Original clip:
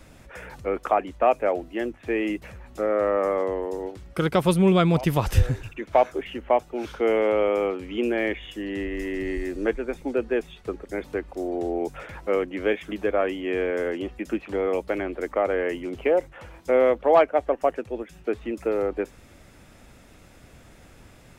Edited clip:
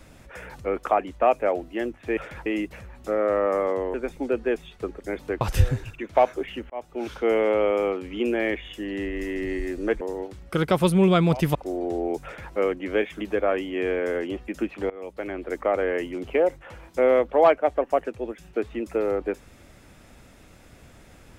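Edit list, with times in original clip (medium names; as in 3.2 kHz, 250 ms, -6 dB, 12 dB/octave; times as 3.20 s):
3.65–5.19 s: swap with 9.79–11.26 s
6.48–6.79 s: fade in linear
11.95–12.24 s: copy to 2.17 s
14.61–15.27 s: fade in, from -21.5 dB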